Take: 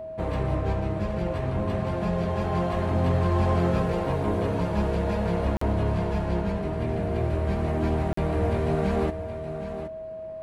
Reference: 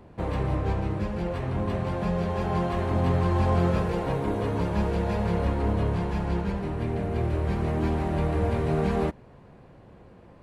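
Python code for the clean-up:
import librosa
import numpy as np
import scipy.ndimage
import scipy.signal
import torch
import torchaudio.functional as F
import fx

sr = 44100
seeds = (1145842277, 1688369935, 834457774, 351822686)

y = fx.fix_declip(x, sr, threshold_db=-16.0)
y = fx.notch(y, sr, hz=640.0, q=30.0)
y = fx.fix_interpolate(y, sr, at_s=(5.57, 8.13), length_ms=44.0)
y = fx.fix_echo_inverse(y, sr, delay_ms=771, level_db=-10.5)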